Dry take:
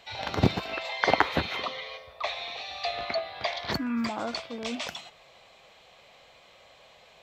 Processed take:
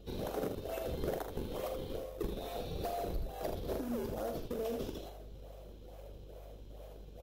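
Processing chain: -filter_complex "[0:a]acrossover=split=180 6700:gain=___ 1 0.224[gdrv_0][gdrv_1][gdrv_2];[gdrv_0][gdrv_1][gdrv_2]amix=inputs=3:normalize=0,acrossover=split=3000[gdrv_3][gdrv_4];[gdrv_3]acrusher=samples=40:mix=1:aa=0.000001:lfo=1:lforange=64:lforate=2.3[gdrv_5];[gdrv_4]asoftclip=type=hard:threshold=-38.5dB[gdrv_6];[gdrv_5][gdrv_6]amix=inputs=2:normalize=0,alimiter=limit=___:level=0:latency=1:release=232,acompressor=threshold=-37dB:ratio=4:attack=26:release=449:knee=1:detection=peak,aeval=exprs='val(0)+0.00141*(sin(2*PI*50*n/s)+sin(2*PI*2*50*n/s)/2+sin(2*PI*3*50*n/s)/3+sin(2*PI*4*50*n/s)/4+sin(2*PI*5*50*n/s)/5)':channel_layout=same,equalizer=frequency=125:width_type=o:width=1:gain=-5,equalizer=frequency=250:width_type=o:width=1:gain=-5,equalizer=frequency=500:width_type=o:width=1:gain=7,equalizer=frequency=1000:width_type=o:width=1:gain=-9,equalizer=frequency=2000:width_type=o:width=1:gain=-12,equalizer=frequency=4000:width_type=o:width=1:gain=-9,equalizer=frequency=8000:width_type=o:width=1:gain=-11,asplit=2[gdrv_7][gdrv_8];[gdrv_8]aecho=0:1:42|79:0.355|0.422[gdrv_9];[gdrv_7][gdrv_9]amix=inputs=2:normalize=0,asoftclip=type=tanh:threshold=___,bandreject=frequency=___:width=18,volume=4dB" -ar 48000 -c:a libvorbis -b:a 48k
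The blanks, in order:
0.0631, -8.5dB, -31.5dB, 4500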